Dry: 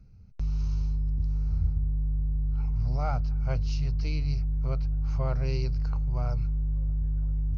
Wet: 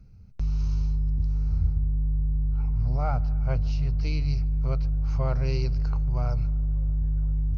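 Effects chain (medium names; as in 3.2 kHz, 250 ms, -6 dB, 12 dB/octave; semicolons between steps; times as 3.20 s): 1.85–4.02 s: treble shelf 3.4 kHz -> 4.5 kHz -11 dB; tape echo 149 ms, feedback 80%, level -20 dB, low-pass 2.5 kHz; trim +2.5 dB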